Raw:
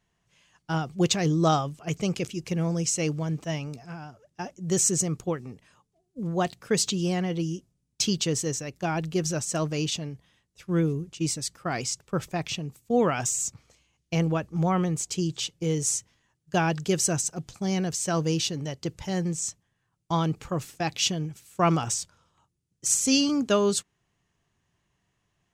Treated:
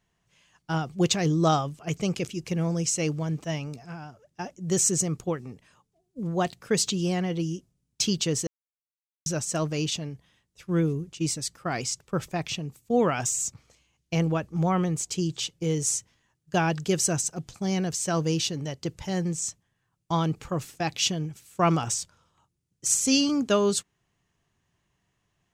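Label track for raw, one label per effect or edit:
8.470000	9.260000	mute

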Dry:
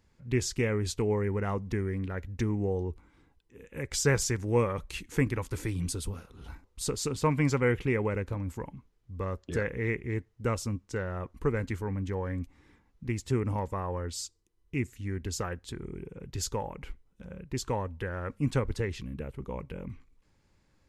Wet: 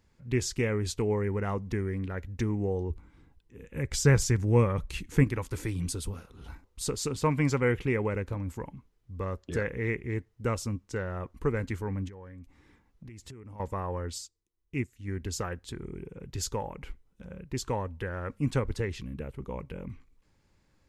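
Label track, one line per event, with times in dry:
2.900000	5.240000	tone controls bass +7 dB, treble -1 dB
12.080000	13.600000	compression 16:1, threshold -42 dBFS
14.180000	15.080000	upward expansion, over -47 dBFS

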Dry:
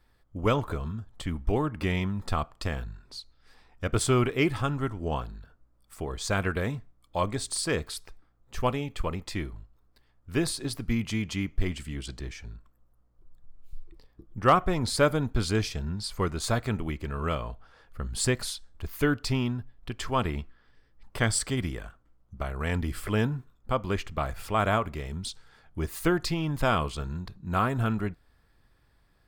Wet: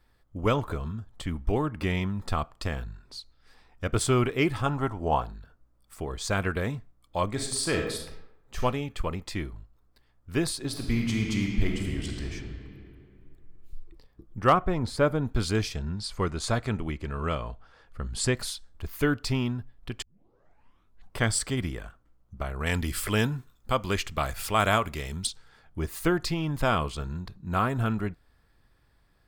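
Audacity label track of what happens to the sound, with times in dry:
4.660000	5.330000	peaking EQ 810 Hz +10 dB 0.99 oct
7.300000	8.590000	reverb throw, RT60 0.82 s, DRR 2 dB
10.660000	12.320000	reverb throw, RT60 2.6 s, DRR 0.5 dB
14.520000	15.250000	treble shelf 3.4 kHz -> 2.2 kHz -11 dB
15.760000	18.370000	low-pass 9.7 kHz
20.020000	20.020000	tape start 1.15 s
22.660000	25.270000	treble shelf 2.3 kHz +11 dB

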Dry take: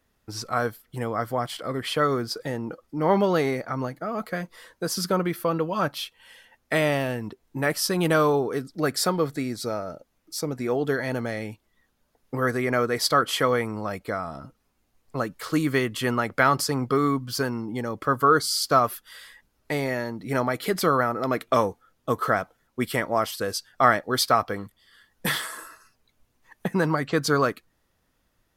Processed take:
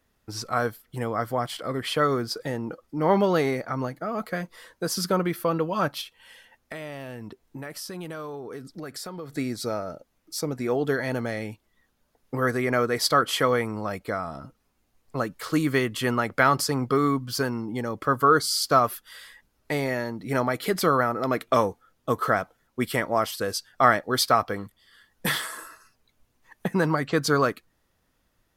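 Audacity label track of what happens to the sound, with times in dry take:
6.010000	9.370000	compression, threshold -34 dBFS

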